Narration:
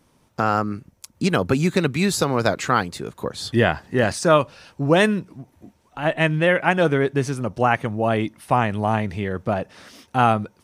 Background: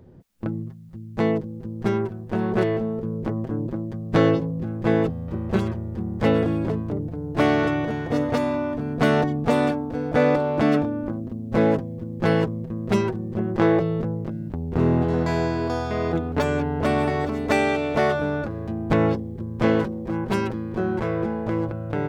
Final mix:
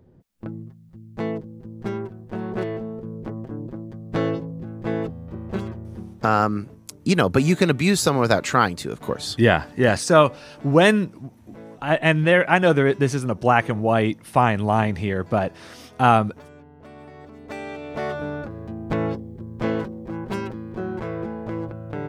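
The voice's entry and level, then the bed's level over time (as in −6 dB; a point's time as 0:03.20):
5.85 s, +1.5 dB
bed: 0:05.98 −5.5 dB
0:06.35 −23 dB
0:16.89 −23 dB
0:18.24 −4.5 dB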